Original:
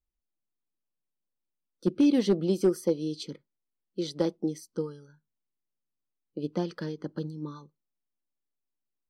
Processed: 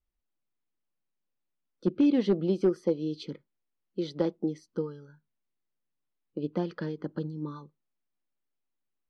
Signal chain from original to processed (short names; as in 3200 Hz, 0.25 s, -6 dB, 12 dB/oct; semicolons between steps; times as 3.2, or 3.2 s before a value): LPF 3200 Hz 12 dB/oct; in parallel at -3 dB: compressor, threshold -36 dBFS, peak gain reduction 16.5 dB; on the sum: gain -2 dB